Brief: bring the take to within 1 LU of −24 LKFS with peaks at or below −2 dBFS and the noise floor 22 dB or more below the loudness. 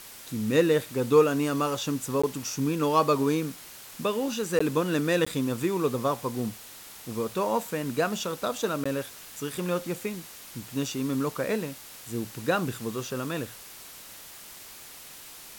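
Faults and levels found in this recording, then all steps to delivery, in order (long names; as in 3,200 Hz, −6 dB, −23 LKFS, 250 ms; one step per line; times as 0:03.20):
number of dropouts 4; longest dropout 15 ms; background noise floor −46 dBFS; target noise floor −50 dBFS; integrated loudness −28.0 LKFS; sample peak −9.0 dBFS; target loudness −24.0 LKFS
→ repair the gap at 0:02.22/0:04.59/0:05.25/0:08.84, 15 ms
broadband denoise 6 dB, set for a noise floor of −46 dBFS
level +4 dB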